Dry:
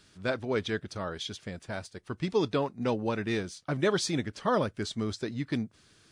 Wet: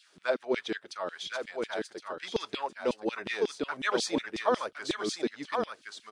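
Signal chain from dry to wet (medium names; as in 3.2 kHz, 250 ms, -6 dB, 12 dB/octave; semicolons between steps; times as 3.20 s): delay 1065 ms -5 dB; LFO high-pass saw down 5.5 Hz 240–3500 Hz; trim -2.5 dB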